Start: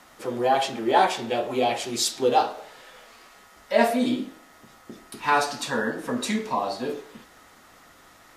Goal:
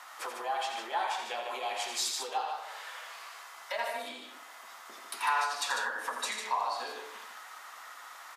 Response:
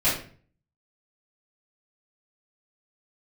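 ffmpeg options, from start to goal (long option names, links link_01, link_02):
-af "acompressor=threshold=-32dB:ratio=6,highpass=frequency=990:width_type=q:width=1.6,aecho=1:1:84.55|148.7:0.447|0.501,volume=1.5dB"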